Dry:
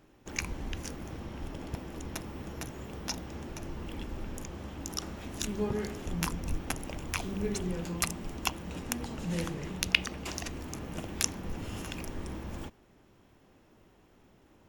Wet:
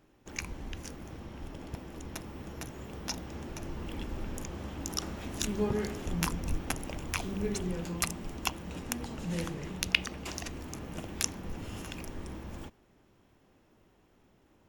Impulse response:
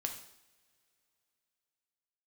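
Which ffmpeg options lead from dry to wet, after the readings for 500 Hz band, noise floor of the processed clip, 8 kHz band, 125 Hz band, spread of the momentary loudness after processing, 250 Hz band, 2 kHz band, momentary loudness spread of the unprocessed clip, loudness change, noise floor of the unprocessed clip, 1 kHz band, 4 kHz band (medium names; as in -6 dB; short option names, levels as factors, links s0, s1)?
0.0 dB, -65 dBFS, -0.5 dB, -0.5 dB, 12 LU, 0.0 dB, -1.0 dB, 10 LU, -0.5 dB, -62 dBFS, -0.5 dB, -1.0 dB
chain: -af "dynaudnorm=f=660:g=11:m=2.51,volume=0.668"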